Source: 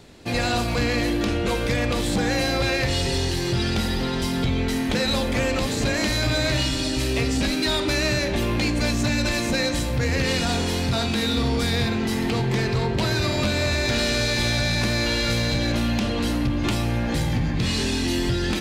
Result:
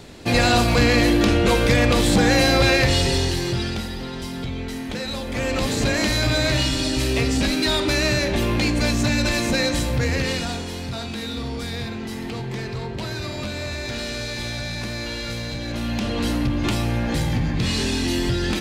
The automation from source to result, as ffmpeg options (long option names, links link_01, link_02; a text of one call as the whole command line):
ffmpeg -i in.wav -af "volume=21.5dB,afade=type=out:start_time=2.71:duration=1.18:silence=0.251189,afade=type=in:start_time=5.25:duration=0.42:silence=0.398107,afade=type=out:start_time=9.95:duration=0.69:silence=0.375837,afade=type=in:start_time=15.65:duration=0.6:silence=0.421697" out.wav